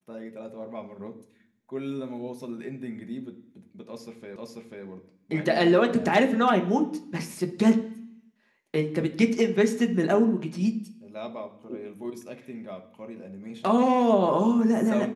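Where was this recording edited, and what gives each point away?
4.36 s: repeat of the last 0.49 s

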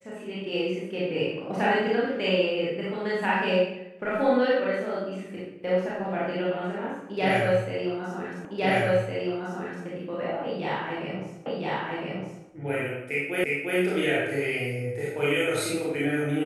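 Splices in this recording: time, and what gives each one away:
8.45 s: repeat of the last 1.41 s
11.46 s: repeat of the last 1.01 s
13.44 s: repeat of the last 0.35 s

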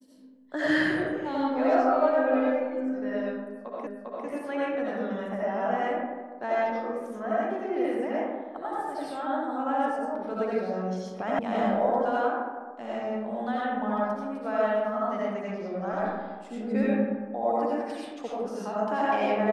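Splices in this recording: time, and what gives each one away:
3.87 s: repeat of the last 0.4 s
11.39 s: sound stops dead

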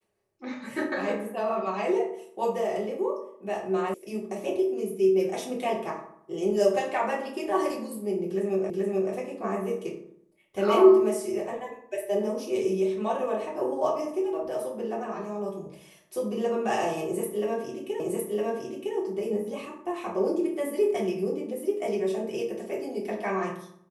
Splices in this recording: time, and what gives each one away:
3.94 s: sound stops dead
8.70 s: repeat of the last 0.43 s
18.00 s: repeat of the last 0.96 s

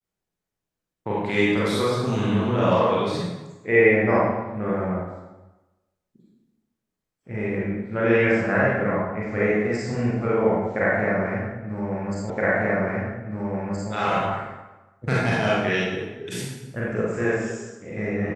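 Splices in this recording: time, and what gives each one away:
12.30 s: repeat of the last 1.62 s

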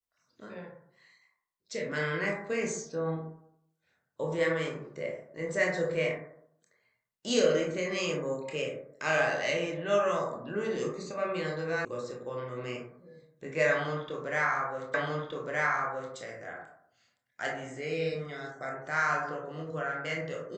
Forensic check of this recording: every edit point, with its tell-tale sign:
11.85 s: sound stops dead
14.94 s: repeat of the last 1.22 s

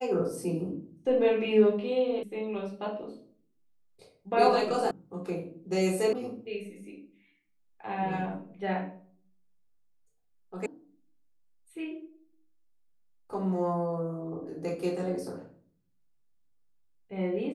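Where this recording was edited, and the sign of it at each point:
2.23 s: sound stops dead
4.91 s: sound stops dead
6.13 s: sound stops dead
10.66 s: sound stops dead

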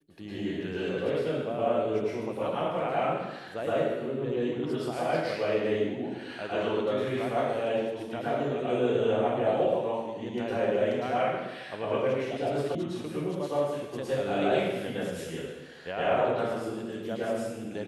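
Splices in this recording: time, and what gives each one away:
12.75 s: sound stops dead

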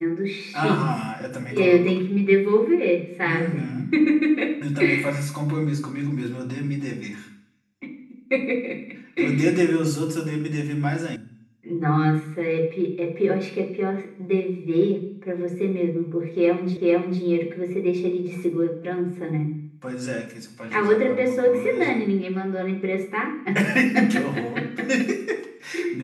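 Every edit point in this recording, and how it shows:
11.16 s: sound stops dead
16.77 s: repeat of the last 0.45 s

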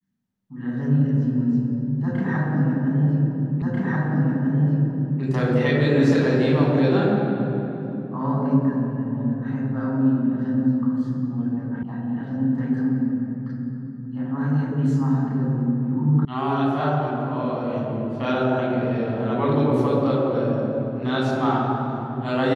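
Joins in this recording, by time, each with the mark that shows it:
3.62 s: repeat of the last 1.59 s
11.83 s: sound stops dead
16.25 s: sound stops dead

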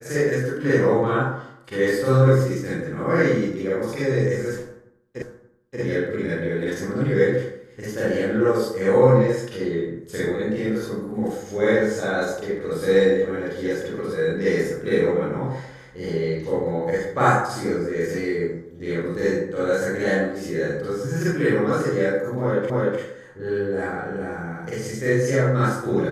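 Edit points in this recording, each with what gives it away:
5.22 s: repeat of the last 0.58 s
22.70 s: repeat of the last 0.3 s

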